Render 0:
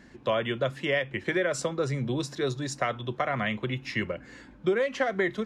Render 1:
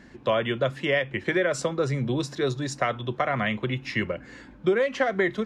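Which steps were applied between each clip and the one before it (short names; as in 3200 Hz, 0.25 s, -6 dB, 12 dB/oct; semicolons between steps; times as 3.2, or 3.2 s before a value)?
high shelf 6800 Hz -5 dB; gain +3 dB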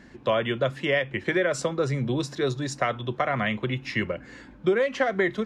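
nothing audible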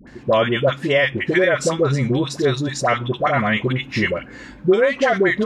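dispersion highs, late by 73 ms, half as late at 820 Hz; gain +7.5 dB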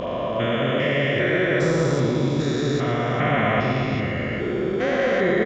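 stepped spectrum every 0.4 s; darkening echo 0.115 s, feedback 77%, low-pass 2800 Hz, level -4 dB; downsampling 16000 Hz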